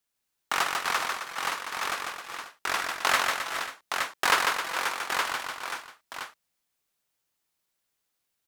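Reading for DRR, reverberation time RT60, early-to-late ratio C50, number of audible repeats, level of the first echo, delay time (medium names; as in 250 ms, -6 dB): no reverb, no reverb, no reverb, 5, -4.0 dB, 147 ms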